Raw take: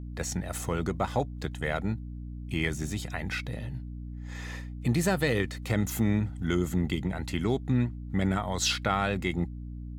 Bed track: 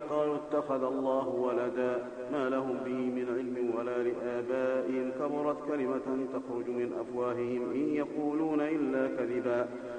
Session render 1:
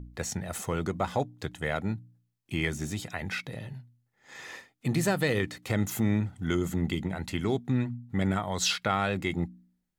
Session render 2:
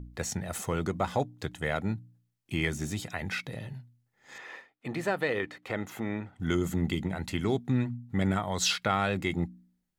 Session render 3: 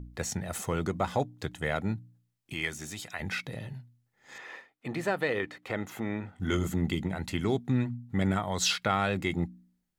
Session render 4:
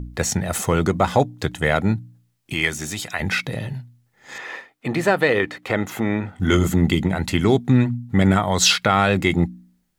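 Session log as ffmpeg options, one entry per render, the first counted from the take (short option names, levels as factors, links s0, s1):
-af "bandreject=f=60:t=h:w=4,bandreject=f=120:t=h:w=4,bandreject=f=180:t=h:w=4,bandreject=f=240:t=h:w=4,bandreject=f=300:t=h:w=4"
-filter_complex "[0:a]asettb=1/sr,asplit=3[s0][s1][s2];[s0]atrim=end=4.384[s3];[s1]atrim=start=4.38:end=6.4,asetpts=PTS-STARTPTS,afade=t=in:d=0.004:c=qsin,afade=t=out:st=2.016:d=0.004:c=qsin,bass=f=250:g=-13,treble=f=4000:g=-15[s4];[s2]atrim=start=6.396[s5];[s3][s4]acrossfade=d=0.004:c1=hsin:c2=qsin[s6];[s6][s5]acrossfade=d=0.004:c1=qsin:c2=hsin"
-filter_complex "[0:a]asettb=1/sr,asplit=3[s0][s1][s2];[s0]atrim=end=2.534[s3];[s1]atrim=start=2.53:end=3.2,asetpts=PTS-STARTPTS,afade=t=in:d=0.004:c=qsin,afade=t=out:st=0.666:d=0.004:c=qsin,lowshelf=f=500:g=-11.5[s4];[s2]atrim=start=3.196[s5];[s3][s4]acrossfade=d=0.004:c1=hsin:c2=qsin[s6];[s6][s5]acrossfade=d=0.004:c1=qsin:c2=hsin,asettb=1/sr,asplit=3[s7][s8][s9];[s7]atrim=end=6.214[s10];[s8]atrim=start=6.21:end=6.67,asetpts=PTS-STARTPTS,afade=t=in:d=0.004:c=qsin,afade=t=out:st=0.456:d=0.004:c=qsin,asplit=2[s11][s12];[s12]adelay=21,volume=0.596[s13];[s11][s13]amix=inputs=2:normalize=0,atrim=end_sample=20286[s14];[s9]atrim=start=6.666[s15];[s10][s14]acrossfade=d=0.004:c1=hsin:c2=qsin[s16];[s16][s15]acrossfade=d=0.004:c1=qsin:c2=hsin"
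-af "volume=3.76,alimiter=limit=0.708:level=0:latency=1"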